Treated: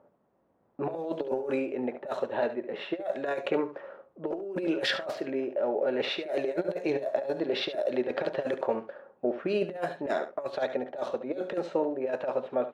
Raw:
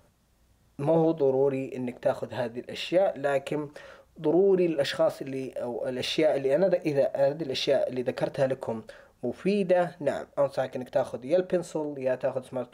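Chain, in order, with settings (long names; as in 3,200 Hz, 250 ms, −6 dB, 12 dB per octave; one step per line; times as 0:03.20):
running median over 5 samples
high-pass filter 330 Hz 12 dB per octave
low-pass that shuts in the quiet parts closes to 800 Hz, open at −20 dBFS
compressor whose output falls as the input rises −29 dBFS, ratio −0.5
single-tap delay 71 ms −11.5 dB
level +1 dB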